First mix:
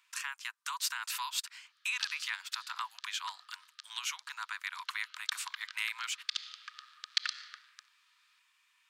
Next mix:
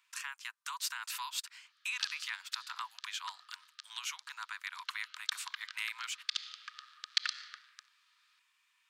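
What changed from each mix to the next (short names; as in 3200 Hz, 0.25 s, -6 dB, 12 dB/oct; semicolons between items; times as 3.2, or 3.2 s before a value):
speech -3.0 dB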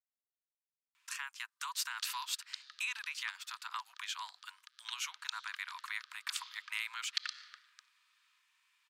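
speech: entry +0.95 s; background -5.0 dB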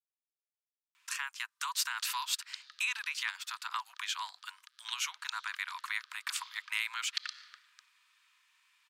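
speech +4.5 dB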